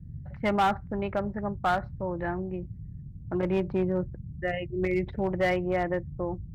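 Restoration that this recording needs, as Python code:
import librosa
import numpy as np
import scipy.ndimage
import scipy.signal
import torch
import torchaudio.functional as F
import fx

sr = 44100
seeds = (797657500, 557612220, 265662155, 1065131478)

y = fx.fix_declip(x, sr, threshold_db=-19.0)
y = fx.noise_reduce(y, sr, print_start_s=2.73, print_end_s=3.23, reduce_db=30.0)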